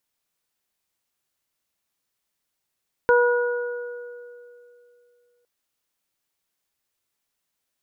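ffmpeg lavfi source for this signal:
ffmpeg -f lavfi -i "aevalsrc='0.2*pow(10,-3*t/2.76)*sin(2*PI*484*t)+0.1*pow(10,-3*t/1.46)*sin(2*PI*968*t)+0.112*pow(10,-3*t/2.22)*sin(2*PI*1452*t)':duration=2.36:sample_rate=44100" out.wav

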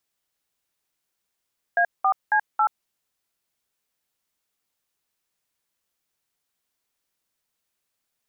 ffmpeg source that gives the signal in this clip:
ffmpeg -f lavfi -i "aevalsrc='0.112*clip(min(mod(t,0.274),0.079-mod(t,0.274))/0.002,0,1)*(eq(floor(t/0.274),0)*(sin(2*PI*697*mod(t,0.274))+sin(2*PI*1633*mod(t,0.274)))+eq(floor(t/0.274),1)*(sin(2*PI*770*mod(t,0.274))+sin(2*PI*1209*mod(t,0.274)))+eq(floor(t/0.274),2)*(sin(2*PI*852*mod(t,0.274))+sin(2*PI*1633*mod(t,0.274)))+eq(floor(t/0.274),3)*(sin(2*PI*852*mod(t,0.274))+sin(2*PI*1336*mod(t,0.274))))':duration=1.096:sample_rate=44100" out.wav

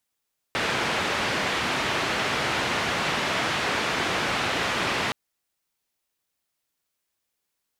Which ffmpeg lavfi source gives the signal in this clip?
ffmpeg -f lavfi -i "anoisesrc=color=white:duration=4.57:sample_rate=44100:seed=1,highpass=frequency=85,lowpass=frequency=2500,volume=-12dB" out.wav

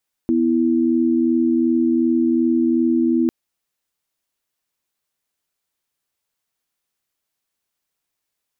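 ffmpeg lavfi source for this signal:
ffmpeg -f lavfi -i "aevalsrc='0.141*(sin(2*PI*246.94*t)+sin(2*PI*329.63*t))':duration=3:sample_rate=44100" out.wav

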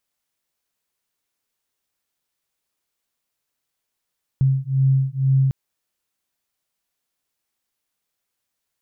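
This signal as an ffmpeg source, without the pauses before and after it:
ffmpeg -f lavfi -i "aevalsrc='0.119*(sin(2*PI*133*t)+sin(2*PI*135.1*t))':duration=1.1:sample_rate=44100" out.wav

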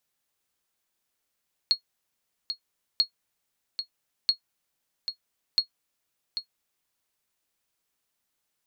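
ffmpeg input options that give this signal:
ffmpeg -f lavfi -i "aevalsrc='0.251*(sin(2*PI*4310*mod(t,1.29))*exp(-6.91*mod(t,1.29)/0.1)+0.335*sin(2*PI*4310*max(mod(t,1.29)-0.79,0))*exp(-6.91*max(mod(t,1.29)-0.79,0)/0.1))':duration=5.16:sample_rate=44100" out.wav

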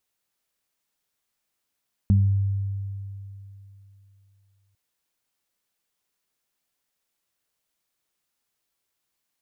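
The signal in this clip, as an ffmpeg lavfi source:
ffmpeg -f lavfi -i "aevalsrc='0.2*pow(10,-3*t/3.06)*sin(2*PI*98.7*t)+0.126*pow(10,-3*t/0.43)*sin(2*PI*197.4*t)':duration=2.65:sample_rate=44100" out.wav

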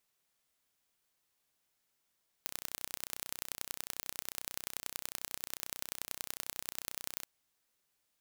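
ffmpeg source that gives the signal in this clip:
ffmpeg -f lavfi -i "aevalsrc='0.355*eq(mod(n,1413),0)*(0.5+0.5*eq(mod(n,4239),0))':duration=4.8:sample_rate=44100" out.wav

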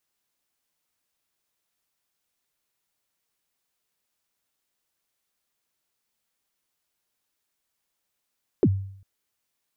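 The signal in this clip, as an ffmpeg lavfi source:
ffmpeg -f lavfi -i "aevalsrc='0.237*pow(10,-3*t/0.63)*sin(2*PI*(460*0.053/log(97/460)*(exp(log(97/460)*min(t,0.053)/0.053)-1)+97*max(t-0.053,0)))':duration=0.4:sample_rate=44100" out.wav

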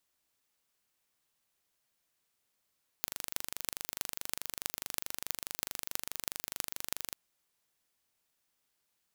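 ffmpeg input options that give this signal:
ffmpeg -f lavfi -i "aevalsrc='0.631*eq(mod(n,1785),0)*(0.5+0.5*eq(mod(n,14280),0))':duration=4.09:sample_rate=44100" out.wav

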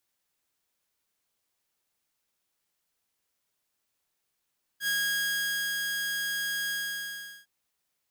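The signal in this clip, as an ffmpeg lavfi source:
ffmpeg -f lavfi -i "aevalsrc='0.0708*(2*mod(1640*t,1)-1)':duration=2.66:sample_rate=44100,afade=type=in:duration=0.074,afade=type=out:start_time=0.074:duration=0.875:silence=0.668,afade=type=out:start_time=1.9:duration=0.76" out.wav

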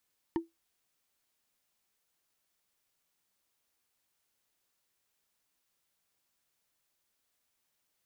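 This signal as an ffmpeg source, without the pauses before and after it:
ffmpeg -f lavfi -i "aevalsrc='0.0668*pow(10,-3*t/0.17)*sin(2*PI*332*t)+0.0299*pow(10,-3*t/0.05)*sin(2*PI*915.3*t)+0.0133*pow(10,-3*t/0.022)*sin(2*PI*1794.1*t)+0.00596*pow(10,-3*t/0.012)*sin(2*PI*2965.8*t)+0.00266*pow(10,-3*t/0.008)*sin(2*PI*4428.9*t)':duration=0.45:sample_rate=44100" out.wav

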